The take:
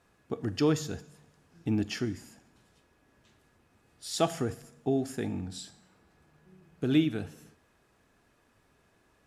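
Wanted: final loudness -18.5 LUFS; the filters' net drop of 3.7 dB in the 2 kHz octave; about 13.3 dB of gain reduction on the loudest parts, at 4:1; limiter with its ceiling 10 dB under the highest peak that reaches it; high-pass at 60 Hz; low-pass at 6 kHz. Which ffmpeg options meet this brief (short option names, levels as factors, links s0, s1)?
-af "highpass=60,lowpass=6000,equalizer=f=2000:t=o:g=-5,acompressor=threshold=0.0158:ratio=4,volume=21.1,alimiter=limit=0.447:level=0:latency=1"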